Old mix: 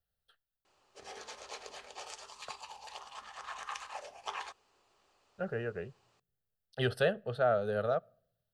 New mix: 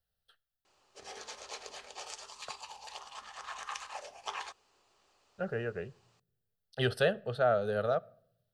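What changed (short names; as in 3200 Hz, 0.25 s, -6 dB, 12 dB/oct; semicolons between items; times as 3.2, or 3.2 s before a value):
speech: send +7.5 dB; master: add bell 6000 Hz +3.5 dB 1.7 oct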